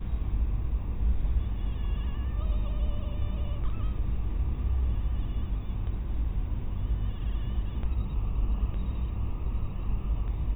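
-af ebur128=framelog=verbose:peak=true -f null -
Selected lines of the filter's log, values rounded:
Integrated loudness:
  I:         -32.8 LUFS
  Threshold: -42.8 LUFS
Loudness range:
  LRA:         1.0 LU
  Threshold: -52.8 LUFS
  LRA low:   -33.3 LUFS
  LRA high:  -32.3 LUFS
True peak:
  Peak:      -15.3 dBFS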